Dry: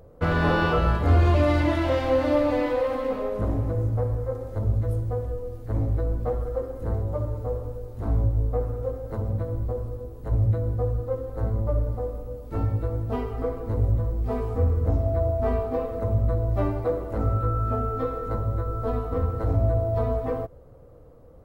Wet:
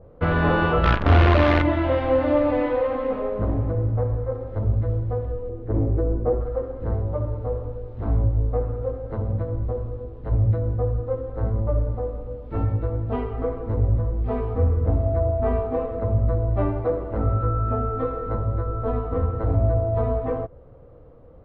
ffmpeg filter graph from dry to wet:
-filter_complex "[0:a]asettb=1/sr,asplit=3[s0][s1][s2];[s0]atrim=end=0.834[s3];[s1]atrim=start=0.83:end=1.62,asetpts=PTS-STARTPTS,afade=t=in:d=0.004:c=qsin,afade=t=out:st=0.786:d=0.004:c=qsin,equalizer=f=1500:w=1.6:g=5.5,acrusher=bits=4:dc=4:mix=0:aa=0.000001[s4];[s2]atrim=start=1.616[s5];[s3][s4]acrossfade=d=0.004:c1=hsin:c2=qsin[s6];[s6][s5]acrossfade=d=0.004:c1=qsin:c2=hsin,asettb=1/sr,asplit=3[s7][s8][s9];[s7]atrim=end=5.494[s10];[s8]atrim=start=5.49:end=6.41,asetpts=PTS-STARTPTS,afade=t=in:d=0.004:c=qsin,afade=t=out:st=0.916:d=0.004:c=qsin,lowpass=f=1500:p=1,equalizer=f=370:w=2.1:g=10.5[s11];[s9]atrim=start=6.406[s12];[s10][s11]acrossfade=d=0.004:c1=hsin:c2=qsin[s13];[s13][s12]acrossfade=d=0.004:c1=qsin:c2=hsin,lowpass=f=3500:w=0.5412,lowpass=f=3500:w=1.3066,adynamicequalizer=threshold=0.00562:dfrequency=2100:dqfactor=0.7:tfrequency=2100:tqfactor=0.7:attack=5:release=100:ratio=0.375:range=2:mode=cutabove:tftype=highshelf,volume=1.26"

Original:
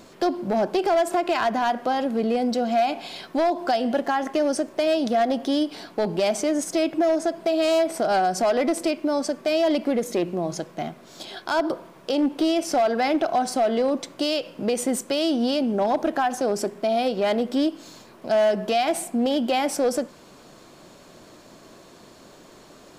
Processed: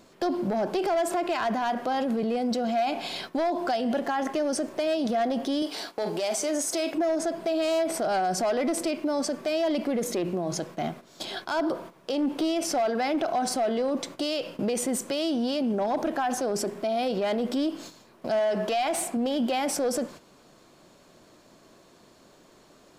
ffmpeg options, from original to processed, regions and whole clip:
-filter_complex "[0:a]asettb=1/sr,asplit=3[s0][s1][s2];[s0]atrim=end=5.624[s3];[s1]atrim=start=5.62:end=6.95,asetpts=PTS-STARTPTS,afade=t=in:d=0.004:c=qsin,afade=t=out:st=1.326:d=0.004:c=qsin,bass=f=250:g=-13,treble=f=4000:g=5,asplit=2[s4][s5];[s5]adelay=42,volume=0.211[s6];[s4][s6]amix=inputs=2:normalize=0,atrim=end_sample=58653[s7];[s2]atrim=start=6.946[s8];[s3][s7]acrossfade=d=0.004:c1=hsin:c2=qsin[s9];[s9][s8]acrossfade=d=0.004:c1=qsin:c2=hsin,asettb=1/sr,asplit=3[s10][s11][s12];[s10]atrim=end=18.394[s13];[s11]atrim=start=18.39:end=19.17,asetpts=PTS-STARTPTS,afade=t=in:d=0.004:c=qsin,afade=t=out:st=0.776:d=0.004:c=qsin,highshelf=f=4200:g=11,asplit=2[s14][s15];[s15]highpass=f=720:p=1,volume=2.82,asoftclip=type=tanh:threshold=0.316[s16];[s14][s16]amix=inputs=2:normalize=0,lowpass=f=1600:p=1,volume=0.501[s17];[s12]atrim=start=19.166[s18];[s13][s17]acrossfade=d=0.004:c1=hsin:c2=qsin[s19];[s19][s18]acrossfade=d=0.004:c1=qsin:c2=hsin,agate=range=0.316:threshold=0.00891:ratio=16:detection=peak,acontrast=81,alimiter=limit=0.158:level=0:latency=1:release=23,volume=0.596"

